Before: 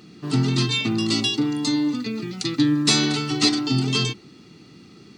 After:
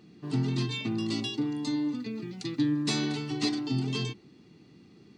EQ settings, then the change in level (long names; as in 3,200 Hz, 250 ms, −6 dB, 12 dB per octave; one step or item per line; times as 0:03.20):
high-shelf EQ 2,600 Hz −8 dB
notch filter 1,300 Hz, Q 8.2
−7.5 dB